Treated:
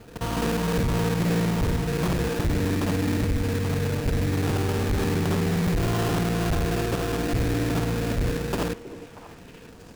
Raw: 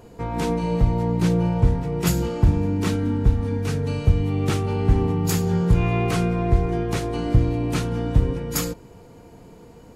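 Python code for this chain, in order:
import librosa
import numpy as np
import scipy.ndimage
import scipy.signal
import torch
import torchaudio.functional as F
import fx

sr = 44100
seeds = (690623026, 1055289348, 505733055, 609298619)

y = fx.local_reverse(x, sr, ms=52.0)
y = fx.sample_hold(y, sr, seeds[0], rate_hz=2100.0, jitter_pct=20)
y = np.clip(10.0 ** (20.5 / 20.0) * y, -1.0, 1.0) / 10.0 ** (20.5 / 20.0)
y = fx.echo_stepped(y, sr, ms=318, hz=350.0, octaves=1.4, feedback_pct=70, wet_db=-9)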